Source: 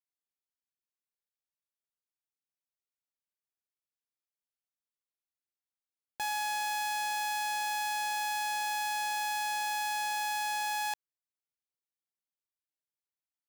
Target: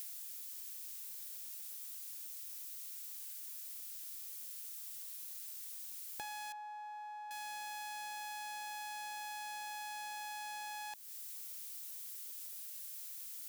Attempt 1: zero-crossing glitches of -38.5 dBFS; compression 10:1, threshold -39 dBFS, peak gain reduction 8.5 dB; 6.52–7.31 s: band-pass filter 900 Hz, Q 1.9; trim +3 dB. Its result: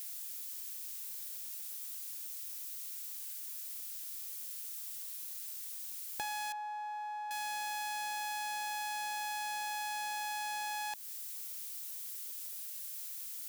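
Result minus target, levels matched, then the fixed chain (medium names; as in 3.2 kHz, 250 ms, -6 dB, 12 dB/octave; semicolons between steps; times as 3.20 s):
compression: peak gain reduction -6.5 dB
zero-crossing glitches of -38.5 dBFS; compression 10:1, threshold -46 dBFS, peak gain reduction 15 dB; 6.52–7.31 s: band-pass filter 900 Hz, Q 1.9; trim +3 dB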